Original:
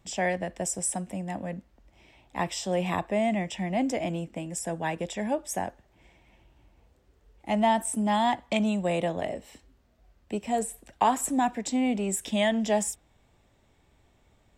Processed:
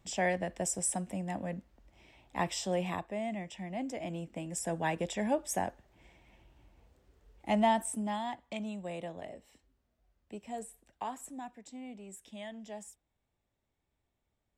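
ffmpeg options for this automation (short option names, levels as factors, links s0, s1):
-af "volume=1.88,afade=t=out:st=2.62:d=0.45:silence=0.421697,afade=t=in:st=3.93:d=0.85:silence=0.375837,afade=t=out:st=7.49:d=0.75:silence=0.281838,afade=t=out:st=10.55:d=0.99:silence=0.473151"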